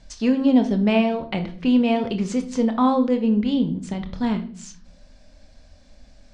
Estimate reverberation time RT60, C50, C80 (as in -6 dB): 0.50 s, 12.5 dB, 17.5 dB